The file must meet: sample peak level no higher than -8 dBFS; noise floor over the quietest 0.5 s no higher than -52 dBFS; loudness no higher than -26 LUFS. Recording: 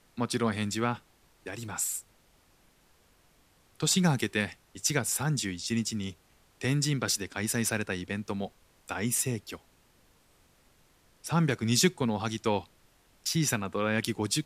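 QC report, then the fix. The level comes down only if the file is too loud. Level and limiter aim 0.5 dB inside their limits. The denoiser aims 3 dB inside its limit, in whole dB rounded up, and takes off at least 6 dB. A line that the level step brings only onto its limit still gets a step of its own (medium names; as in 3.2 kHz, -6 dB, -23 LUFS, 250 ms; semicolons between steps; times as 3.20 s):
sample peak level -11.0 dBFS: pass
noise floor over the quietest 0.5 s -64 dBFS: pass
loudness -30.0 LUFS: pass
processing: none needed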